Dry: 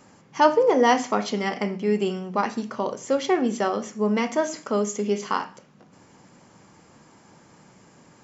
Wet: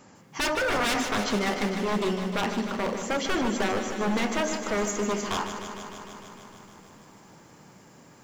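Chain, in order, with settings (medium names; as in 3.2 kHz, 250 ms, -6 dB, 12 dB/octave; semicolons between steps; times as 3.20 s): wavefolder -21 dBFS; bit-crushed delay 152 ms, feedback 80%, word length 10-bit, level -9 dB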